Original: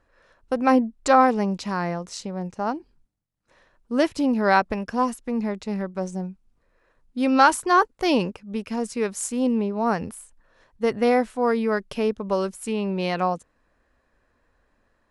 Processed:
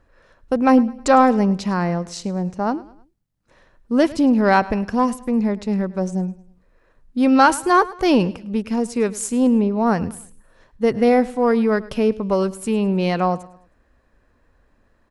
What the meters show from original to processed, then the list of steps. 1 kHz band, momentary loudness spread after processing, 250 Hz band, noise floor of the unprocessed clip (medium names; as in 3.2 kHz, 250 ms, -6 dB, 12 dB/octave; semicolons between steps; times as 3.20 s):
+2.5 dB, 11 LU, +6.5 dB, -69 dBFS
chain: bass shelf 360 Hz +6.5 dB; in parallel at -9 dB: saturation -16 dBFS, distortion -10 dB; on the sum: feedback delay 105 ms, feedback 40%, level -19.5 dB